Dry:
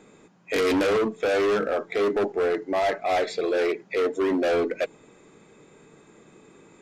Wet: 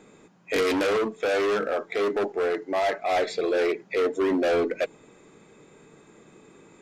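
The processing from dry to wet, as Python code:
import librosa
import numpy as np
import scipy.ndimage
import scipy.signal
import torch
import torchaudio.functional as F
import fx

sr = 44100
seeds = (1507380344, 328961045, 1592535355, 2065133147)

y = fx.low_shelf(x, sr, hz=270.0, db=-6.5, at=(0.63, 3.16))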